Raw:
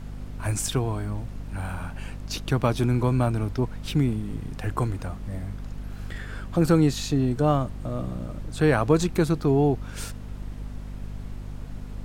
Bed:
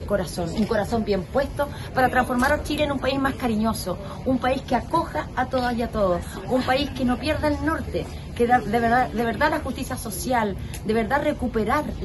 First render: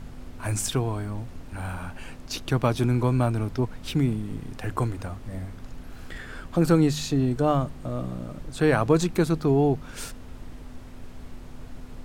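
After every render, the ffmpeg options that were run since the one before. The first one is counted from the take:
-af "bandreject=f=50:t=h:w=4,bandreject=f=100:t=h:w=4,bandreject=f=150:t=h:w=4,bandreject=f=200:t=h:w=4"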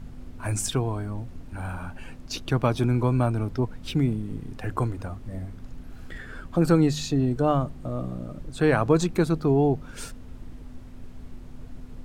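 -af "afftdn=nr=6:nf=-42"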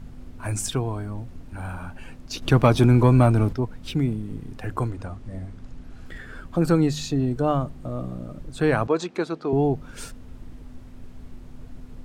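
-filter_complex "[0:a]asettb=1/sr,asplit=3[a][b][c];[a]atrim=end=2.424[d];[b]atrim=start=2.42:end=3.53,asetpts=PTS-STARTPTS,afade=t=in:d=0.004:c=qsin,afade=t=out:st=1.106:d=0.004:c=qsin,acontrast=89[e];[c]atrim=start=3.526[f];[d][e]acrossfade=d=0.004:c1=hsin:c2=qsin[g];[g][f]acrossfade=d=0.004:c1=qsin:c2=hsin,asettb=1/sr,asplit=3[h][i][j];[h]atrim=end=4.904[k];[i]atrim=start=4.9:end=6.06,asetpts=PTS-STARTPTS,afade=t=in:d=0.004:c=qsin,afade=t=out:st=1.156:d=0.004:c=qsin,lowpass=9.3k[l];[j]atrim=start=6.056[m];[k][l]acrossfade=d=0.004:c1=hsin:c2=qsin[n];[n][m]acrossfade=d=0.004:c1=qsin:c2=hsin,asettb=1/sr,asplit=3[o][p][q];[o]atrim=end=8.874[r];[p]atrim=start=8.87:end=9.53,asetpts=PTS-STARTPTS,afade=t=in:d=0.004:c=qsin,afade=t=out:st=0.656:d=0.004:c=qsin,highpass=340,lowpass=5.4k[s];[q]atrim=start=9.526[t];[r][s]acrossfade=d=0.004:c1=hsin:c2=qsin[u];[u][t]acrossfade=d=0.004:c1=qsin:c2=hsin"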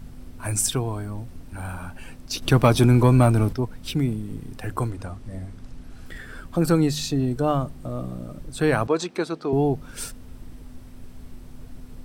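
-af "highshelf=f=5.8k:g=11,bandreject=f=6.8k:w=12"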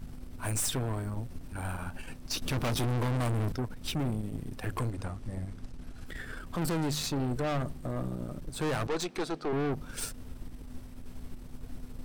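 -af "aeval=exprs='(tanh(25.1*val(0)+0.55)-tanh(0.55))/25.1':c=same"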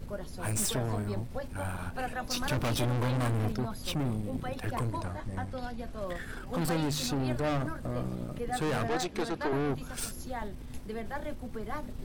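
-filter_complex "[1:a]volume=-16.5dB[a];[0:a][a]amix=inputs=2:normalize=0"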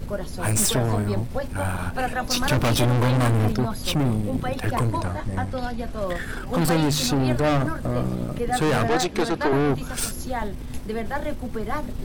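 -af "volume=9.5dB"

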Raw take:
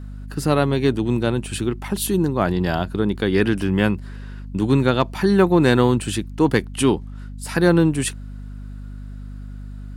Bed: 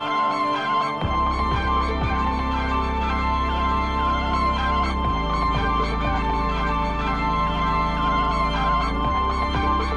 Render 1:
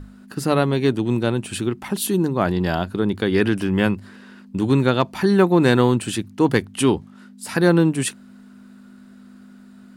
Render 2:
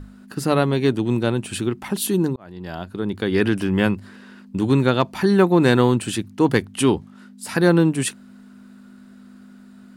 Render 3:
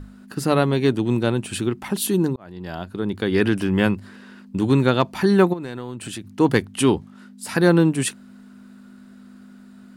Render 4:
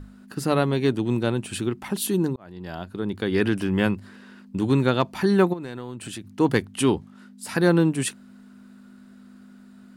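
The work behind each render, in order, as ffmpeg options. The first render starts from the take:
-af "bandreject=f=50:t=h:w=6,bandreject=f=100:t=h:w=6,bandreject=f=150:t=h:w=6"
-filter_complex "[0:a]asplit=2[a][b];[a]atrim=end=2.36,asetpts=PTS-STARTPTS,afade=t=out:st=2.356:d=0.004:c=hsin[c];[b]atrim=start=2.36,asetpts=PTS-STARTPTS,afade=t=in:d=1.12[d];[c][d]concat=n=2:v=0:a=1"
-filter_complex "[0:a]asplit=3[a][b][c];[a]afade=t=out:st=5.52:d=0.02[d];[b]acompressor=threshold=-28dB:ratio=8:attack=3.2:release=140:knee=1:detection=peak,afade=t=in:st=5.52:d=0.02,afade=t=out:st=6.31:d=0.02[e];[c]afade=t=in:st=6.31:d=0.02[f];[d][e][f]amix=inputs=3:normalize=0"
-af "volume=-3dB"

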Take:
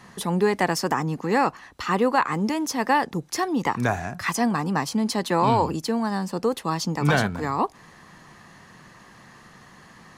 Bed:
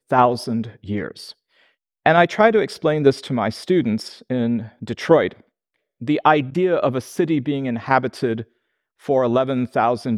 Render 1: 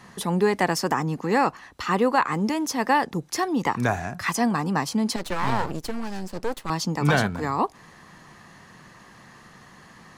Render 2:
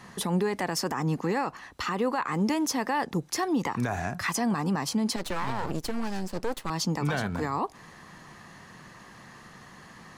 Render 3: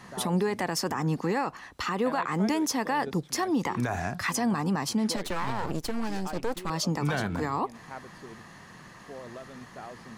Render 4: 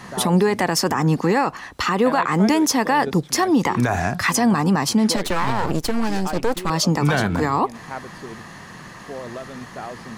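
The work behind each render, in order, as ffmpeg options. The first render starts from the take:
-filter_complex "[0:a]asettb=1/sr,asplit=3[a][b][c];[a]atrim=end=5.164[d];[b]atrim=start=5.16:end=6.7,asetpts=PTS-STARTPTS,afade=t=in:d=0.004:c=qsin,afade=t=out:st=1.536:d=0.004:c=qsin,aeval=exprs='max(val(0),0)':c=same[e];[c]atrim=start=6.696[f];[d][e]acrossfade=d=0.004:c1=hsin:c2=qsin[g];[g][f]acrossfade=d=0.004:c1=qsin:c2=hsin"
-af "alimiter=limit=-19dB:level=0:latency=1:release=85"
-filter_complex "[1:a]volume=-25.5dB[a];[0:a][a]amix=inputs=2:normalize=0"
-af "volume=9.5dB"

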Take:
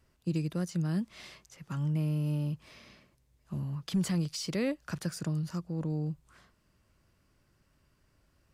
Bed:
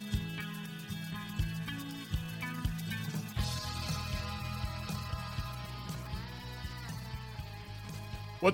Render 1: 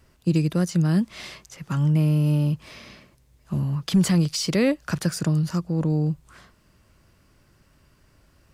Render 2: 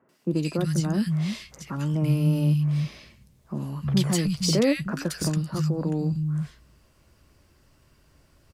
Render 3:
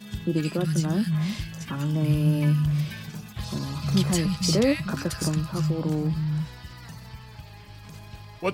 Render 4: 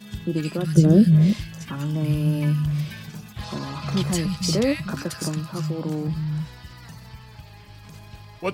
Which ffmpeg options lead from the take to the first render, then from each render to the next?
-af "volume=10.5dB"
-filter_complex "[0:a]asplit=2[a][b];[b]adelay=14,volume=-13dB[c];[a][c]amix=inputs=2:normalize=0,acrossover=split=170|1600[d][e][f];[f]adelay=90[g];[d]adelay=310[h];[h][e][g]amix=inputs=3:normalize=0"
-filter_complex "[1:a]volume=0dB[a];[0:a][a]amix=inputs=2:normalize=0"
-filter_complex "[0:a]asettb=1/sr,asplit=3[a][b][c];[a]atrim=end=0.774[d];[b]atrim=start=0.77:end=1.33,asetpts=PTS-STARTPTS,afade=t=in:d=0.004:c=qsin,afade=t=out:st=0.556:d=0.004:c=qsin,lowshelf=f=680:t=q:w=3:g=9.5[e];[c]atrim=start=1.326[f];[d][e]acrossfade=d=0.004:c1=hsin:c2=qsin[g];[g][f]acrossfade=d=0.004:c1=qsin:c2=hsin,asettb=1/sr,asplit=3[h][i][j];[h]atrim=end=3.414[k];[i]atrim=start=3.41:end=4.02,asetpts=PTS-STARTPTS,afade=t=in:d=0.004:c=qsin,afade=t=out:st=0.606:d=0.004:c=qsin,asplit=2[l][m];[m]highpass=f=720:p=1,volume=14dB,asoftclip=type=tanh:threshold=-9dB[n];[l][n]amix=inputs=2:normalize=0,lowpass=f=1.6k:p=1,volume=-6dB[o];[j]atrim=start=4.016[p];[k][o]acrossfade=d=0.004:c1=hsin:c2=qsin[q];[q][p]acrossfade=d=0.004:c1=qsin:c2=hsin,asettb=1/sr,asplit=3[r][s][t];[r]atrim=end=5.024[u];[s]atrim=start=5.02:end=6.08,asetpts=PTS-STARTPTS,afade=t=in:d=0.004:c=qsin,afade=t=out:st=1.056:d=0.004:c=qsin,highpass=140[v];[t]atrim=start=6.076[w];[u][v]acrossfade=d=0.004:c1=hsin:c2=qsin[x];[x][w]acrossfade=d=0.004:c1=qsin:c2=hsin"

